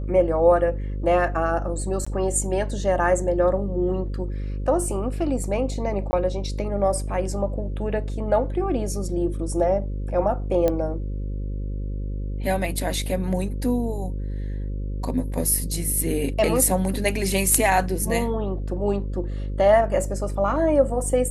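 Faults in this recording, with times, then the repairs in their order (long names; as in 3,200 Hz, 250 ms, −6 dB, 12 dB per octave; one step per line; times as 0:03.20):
mains buzz 50 Hz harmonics 11 −28 dBFS
0:02.05–0:02.06: drop-out 15 ms
0:06.11–0:06.13: drop-out 20 ms
0:10.68: click −10 dBFS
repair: click removal
hum removal 50 Hz, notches 11
repair the gap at 0:02.05, 15 ms
repair the gap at 0:06.11, 20 ms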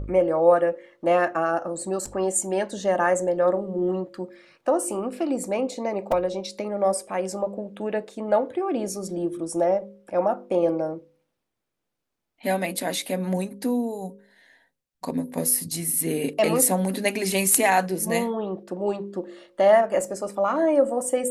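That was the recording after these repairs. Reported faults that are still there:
0:10.68: click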